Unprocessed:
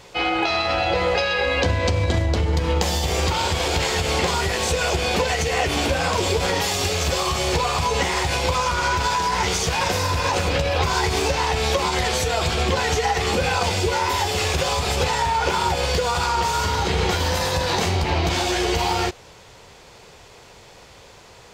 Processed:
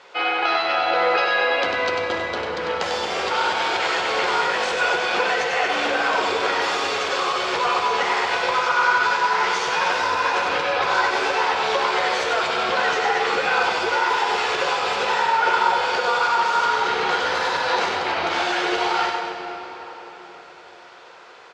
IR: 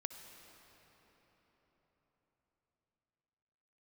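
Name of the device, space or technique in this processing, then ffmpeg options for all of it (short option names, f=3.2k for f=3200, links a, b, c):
station announcement: -filter_complex "[0:a]highpass=430,lowpass=4k,equalizer=f=1.4k:t=o:w=0.5:g=7.5,aecho=1:1:96.21|230.3:0.562|0.282[a];[1:a]atrim=start_sample=2205[b];[a][b]afir=irnorm=-1:irlink=0,volume=2dB"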